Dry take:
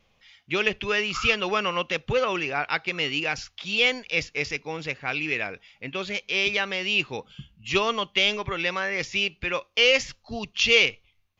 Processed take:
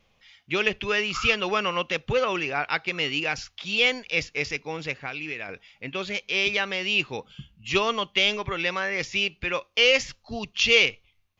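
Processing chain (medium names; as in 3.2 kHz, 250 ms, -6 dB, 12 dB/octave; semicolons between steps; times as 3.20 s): 4.94–5.49 s: compression 5:1, threshold -30 dBFS, peak gain reduction 8 dB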